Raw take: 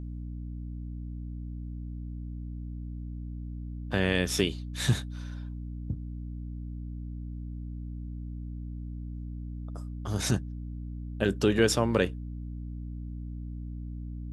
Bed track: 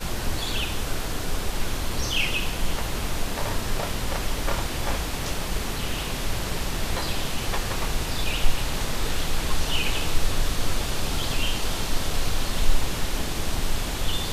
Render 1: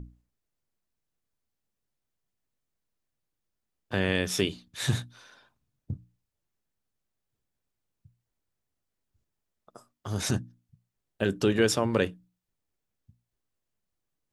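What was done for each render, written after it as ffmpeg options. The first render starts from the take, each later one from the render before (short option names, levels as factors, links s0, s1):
-af "bandreject=f=60:t=h:w=6,bandreject=f=120:t=h:w=6,bandreject=f=180:t=h:w=6,bandreject=f=240:t=h:w=6,bandreject=f=300:t=h:w=6"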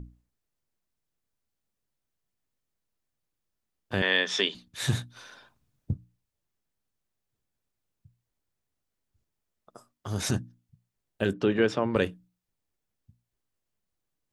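-filter_complex "[0:a]asettb=1/sr,asplit=3[s0][s1][s2];[s0]atrim=end=4.024[s3];[s1]atrim=start=4.02:end=4.55,asetpts=PTS-STARTPTS,afade=t=in:d=0.004:c=qsin,afade=t=out:st=0.526:d=0.004:c=qsin,highpass=f=250:w=0.5412,highpass=f=250:w=1.3066,equalizer=f=320:t=q:w=4:g=-9,equalizer=f=1000:t=q:w=4:g=6,equalizer=f=1800:t=q:w=4:g=8,equalizer=f=3400:t=q:w=4:g=9,lowpass=f=6400:w=0.5412,lowpass=f=6400:w=1.3066[s4];[s2]atrim=start=4.546[s5];[s3][s4]acrossfade=d=0.004:c1=hsin:c2=qsin[s6];[s6][s5]acrossfade=d=0.004:c1=qsin:c2=hsin,asettb=1/sr,asplit=3[s7][s8][s9];[s7]atrim=end=5.164[s10];[s8]atrim=start=5.16:end=5.93,asetpts=PTS-STARTPTS,afade=t=in:d=0.004:c=qsin,afade=t=out:st=0.766:d=0.004:c=qsin,acontrast=31[s11];[s9]atrim=start=5.926[s12];[s10][s11]acrossfade=d=0.004:c1=hsin:c2=qsin[s13];[s13][s12]acrossfade=d=0.004:c1=qsin:c2=hsin,asettb=1/sr,asplit=3[s14][s15][s16];[s14]atrim=end=11.334[s17];[s15]atrim=start=11.33:end=11.96,asetpts=PTS-STARTPTS,afade=t=in:d=0.004:c=qsin,afade=t=out:st=0.626:d=0.004:c=qsin,highpass=130,lowpass=2900[s18];[s16]atrim=start=11.956[s19];[s17][s18]acrossfade=d=0.004:c1=hsin:c2=qsin[s20];[s20][s19]acrossfade=d=0.004:c1=qsin:c2=hsin"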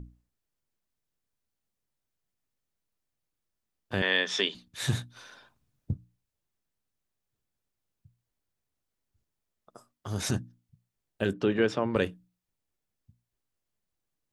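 -af "volume=0.841"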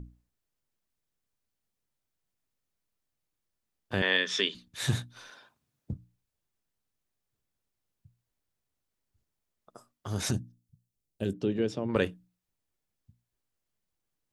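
-filter_complex "[0:a]asettb=1/sr,asplit=3[s0][s1][s2];[s0]atrim=end=4.174[s3];[s1]atrim=start=4.17:end=4.64,asetpts=PTS-STARTPTS,afade=t=in:d=0.004:c=qsin,afade=t=out:st=0.466:d=0.004:c=qsin,equalizer=f=760:w=2.4:g=-12[s4];[s2]atrim=start=4.636[s5];[s3][s4]acrossfade=d=0.004:c1=hsin:c2=qsin[s6];[s6][s5]acrossfade=d=0.004:c1=qsin:c2=hsin,asettb=1/sr,asplit=3[s7][s8][s9];[s7]atrim=end=5.304[s10];[s8]atrim=start=5.3:end=5.93,asetpts=PTS-STARTPTS,afade=t=in:d=0.004:c=qsin,afade=t=out:st=0.626:d=0.004:c=qsin,highpass=f=200:p=1[s11];[s9]atrim=start=5.926[s12];[s10][s11]acrossfade=d=0.004:c1=hsin:c2=qsin[s13];[s13][s12]acrossfade=d=0.004:c1=qsin:c2=hsin,asplit=3[s14][s15][s16];[s14]afade=t=out:st=10.31:d=0.02[s17];[s15]equalizer=f=1400:t=o:w=2.2:g=-15,afade=t=in:st=10.31:d=0.02,afade=t=out:st=11.88:d=0.02[s18];[s16]afade=t=in:st=11.88:d=0.02[s19];[s17][s18][s19]amix=inputs=3:normalize=0"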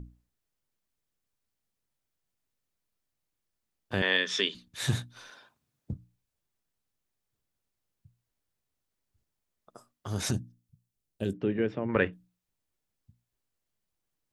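-filter_complex "[0:a]asettb=1/sr,asplit=3[s0][s1][s2];[s0]atrim=end=11.374[s3];[s1]atrim=start=11.37:end=12.13,asetpts=PTS-STARTPTS,afade=t=in:d=0.004:c=qsin,afade=t=out:st=0.756:d=0.004:c=qsin,lowpass=f=2000:t=q:w=2.2[s4];[s2]atrim=start=12.126[s5];[s3][s4]acrossfade=d=0.004:c1=hsin:c2=qsin[s6];[s6][s5]acrossfade=d=0.004:c1=qsin:c2=hsin"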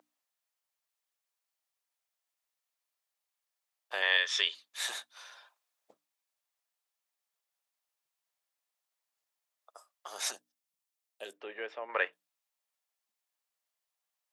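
-af "highpass=f=620:w=0.5412,highpass=f=620:w=1.3066,bandreject=f=1500:w=21"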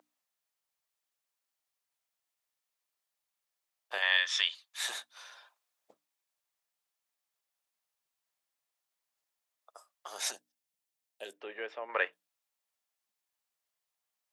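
-filter_complex "[0:a]asettb=1/sr,asplit=3[s0][s1][s2];[s0]atrim=end=3.984[s3];[s1]atrim=start=3.98:end=4.84,asetpts=PTS-STARTPTS,afade=t=in:d=0.004:c=qsin,afade=t=out:st=0.856:d=0.004:c=qsin,highpass=f=640:w=0.5412,highpass=f=640:w=1.3066[s4];[s2]atrim=start=4.836[s5];[s3][s4]acrossfade=d=0.004:c1=hsin:c2=qsin[s6];[s6][s5]acrossfade=d=0.004:c1=qsin:c2=hsin,asettb=1/sr,asplit=3[s7][s8][s9];[s7]atrim=end=10.184[s10];[s8]atrim=start=10.18:end=11.42,asetpts=PTS-STARTPTS,afade=t=in:d=0.004:c=qsin,afade=t=out:st=1.236:d=0.004:c=qsin,equalizer=f=1200:w=6.6:g=-6.5[s11];[s9]atrim=start=11.416[s12];[s10][s11]acrossfade=d=0.004:c1=hsin:c2=qsin[s13];[s13][s12]acrossfade=d=0.004:c1=qsin:c2=hsin"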